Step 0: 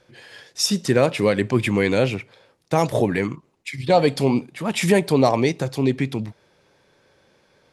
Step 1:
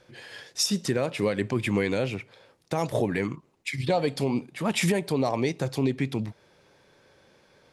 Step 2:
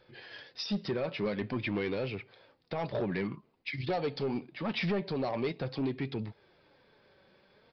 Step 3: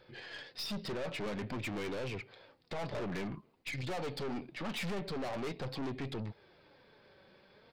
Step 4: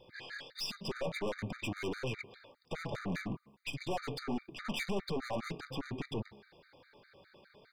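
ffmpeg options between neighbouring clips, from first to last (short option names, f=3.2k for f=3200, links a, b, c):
-af "alimiter=limit=-14.5dB:level=0:latency=1:release=477"
-af "flanger=delay=2.3:depth=3:regen=63:speed=0.48:shape=sinusoidal,aresample=11025,asoftclip=type=tanh:threshold=-25.5dB,aresample=44100"
-af "aeval=exprs='(tanh(89.1*val(0)+0.4)-tanh(0.4))/89.1':c=same,volume=3dB"
-af "bandreject=f=69.5:t=h:w=4,bandreject=f=139:t=h:w=4,bandreject=f=208.5:t=h:w=4,bandreject=f=278:t=h:w=4,bandreject=f=347.5:t=h:w=4,bandreject=f=417:t=h:w=4,bandreject=f=486.5:t=h:w=4,bandreject=f=556:t=h:w=4,bandreject=f=625.5:t=h:w=4,bandreject=f=695:t=h:w=4,bandreject=f=764.5:t=h:w=4,bandreject=f=834:t=h:w=4,bandreject=f=903.5:t=h:w=4,bandreject=f=973:t=h:w=4,bandreject=f=1.0425k:t=h:w=4,bandreject=f=1.112k:t=h:w=4,bandreject=f=1.1815k:t=h:w=4,afftfilt=real='re*gt(sin(2*PI*4.9*pts/sr)*(1-2*mod(floor(b*sr/1024/1200),2)),0)':imag='im*gt(sin(2*PI*4.9*pts/sr)*(1-2*mod(floor(b*sr/1024/1200),2)),0)':win_size=1024:overlap=0.75,volume=4dB"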